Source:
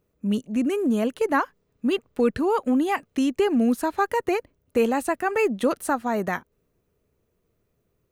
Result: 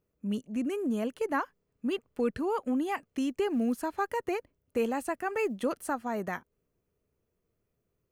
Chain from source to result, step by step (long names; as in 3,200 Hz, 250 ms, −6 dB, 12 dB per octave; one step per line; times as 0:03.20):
notch filter 3,800 Hz, Q 11
0:03.08–0:05.63: floating-point word with a short mantissa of 6 bits
level −8 dB